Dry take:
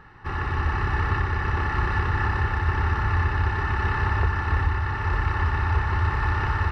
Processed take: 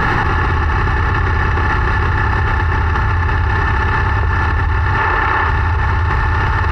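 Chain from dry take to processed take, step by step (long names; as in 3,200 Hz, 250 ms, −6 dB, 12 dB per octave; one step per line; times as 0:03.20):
0:04.98–0:05.49: bass and treble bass −11 dB, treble −7 dB
envelope flattener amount 100%
level +3.5 dB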